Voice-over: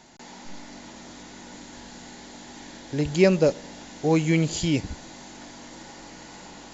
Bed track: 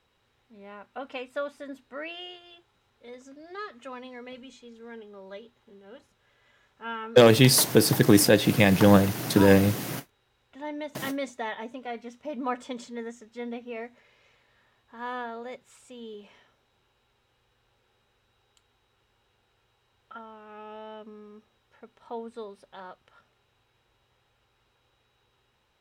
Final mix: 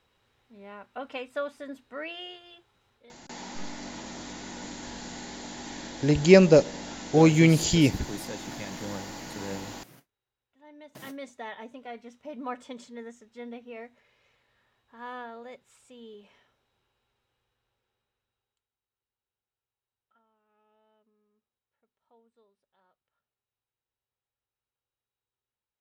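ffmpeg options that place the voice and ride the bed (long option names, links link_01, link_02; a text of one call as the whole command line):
ffmpeg -i stem1.wav -i stem2.wav -filter_complex "[0:a]adelay=3100,volume=3dB[link_01];[1:a]volume=15.5dB,afade=type=out:start_time=2.93:duration=0.21:silence=0.0944061,afade=type=in:start_time=10.57:duration=1.02:silence=0.16788,afade=type=out:start_time=16.41:duration=2.28:silence=0.0841395[link_02];[link_01][link_02]amix=inputs=2:normalize=0" out.wav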